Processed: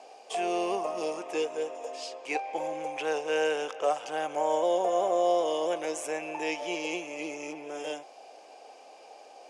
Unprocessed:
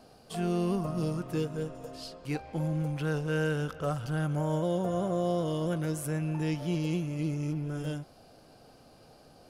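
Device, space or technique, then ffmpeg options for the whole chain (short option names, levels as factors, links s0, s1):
phone speaker on a table: -af "highpass=f=420:w=0.5412,highpass=f=420:w=1.3066,equalizer=f=800:t=q:w=4:g=7,equalizer=f=1400:t=q:w=4:g=-10,equalizer=f=2400:t=q:w=4:g=7,equalizer=f=4300:t=q:w=4:g=-8,equalizer=f=6600:t=q:w=4:g=4,lowpass=f=8300:w=0.5412,lowpass=f=8300:w=1.3066,volume=2"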